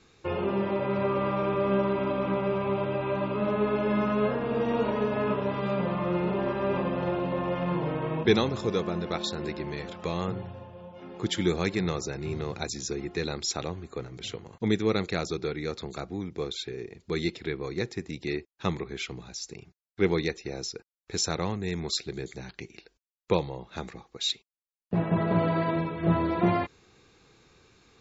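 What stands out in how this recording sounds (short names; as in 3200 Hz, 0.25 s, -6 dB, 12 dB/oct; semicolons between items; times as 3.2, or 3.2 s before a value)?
noise floor -75 dBFS; spectral tilt -5.5 dB/oct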